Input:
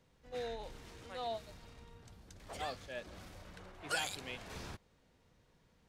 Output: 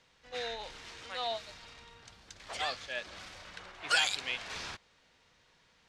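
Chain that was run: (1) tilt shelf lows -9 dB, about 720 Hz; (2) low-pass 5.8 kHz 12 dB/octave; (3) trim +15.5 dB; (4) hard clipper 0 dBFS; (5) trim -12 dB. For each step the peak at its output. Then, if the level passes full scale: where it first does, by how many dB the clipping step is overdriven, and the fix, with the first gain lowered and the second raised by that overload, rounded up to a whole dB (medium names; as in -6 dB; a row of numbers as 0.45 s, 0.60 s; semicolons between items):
-16.5 dBFS, -18.0 dBFS, -2.5 dBFS, -2.5 dBFS, -14.5 dBFS; nothing clips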